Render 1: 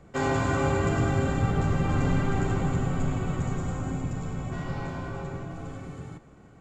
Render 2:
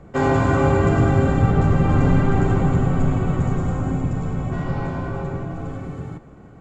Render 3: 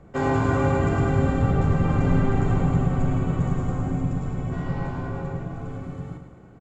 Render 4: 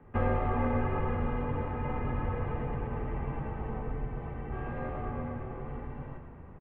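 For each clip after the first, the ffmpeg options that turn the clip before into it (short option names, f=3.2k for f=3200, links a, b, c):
-af "highshelf=f=2.3k:g=-10.5,volume=8.5dB"
-af "aecho=1:1:107|214|321|428|535|642:0.376|0.192|0.0978|0.0499|0.0254|0.013,volume=-5dB"
-filter_complex "[0:a]acompressor=threshold=-25dB:ratio=2,highpass=f=230:t=q:w=0.5412,highpass=f=230:t=q:w=1.307,lowpass=f=3k:t=q:w=0.5176,lowpass=f=3k:t=q:w=0.7071,lowpass=f=3k:t=q:w=1.932,afreqshift=-300,asplit=7[a][b][c][d][e][f][g];[b]adelay=486,afreqshift=-84,volume=-13.5dB[h];[c]adelay=972,afreqshift=-168,volume=-18.5dB[i];[d]adelay=1458,afreqshift=-252,volume=-23.6dB[j];[e]adelay=1944,afreqshift=-336,volume=-28.6dB[k];[f]adelay=2430,afreqshift=-420,volume=-33.6dB[l];[g]adelay=2916,afreqshift=-504,volume=-38.7dB[m];[a][h][i][j][k][l][m]amix=inputs=7:normalize=0"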